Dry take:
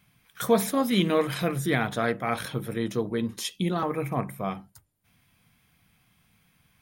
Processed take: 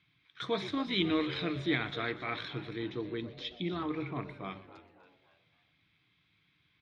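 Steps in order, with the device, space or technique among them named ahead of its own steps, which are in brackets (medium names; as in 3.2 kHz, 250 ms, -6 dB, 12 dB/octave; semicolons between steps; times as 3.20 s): 2.76–4.16 s: distance through air 140 m; frequency-shifting delay pedal into a guitar cabinet (frequency-shifting echo 123 ms, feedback 59%, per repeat -94 Hz, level -17 dB; cabinet simulation 82–4600 Hz, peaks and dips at 220 Hz -10 dB, 310 Hz +9 dB, 550 Hz -10 dB, 790 Hz -6 dB, 2.2 kHz +6 dB, 3.7 kHz +10 dB); frequency-shifting echo 279 ms, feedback 44%, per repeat +130 Hz, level -16 dB; trim -8 dB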